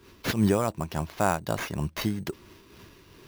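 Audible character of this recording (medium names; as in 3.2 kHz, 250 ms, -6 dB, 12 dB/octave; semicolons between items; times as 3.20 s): aliases and images of a low sample rate 8.4 kHz, jitter 0%; random flutter of the level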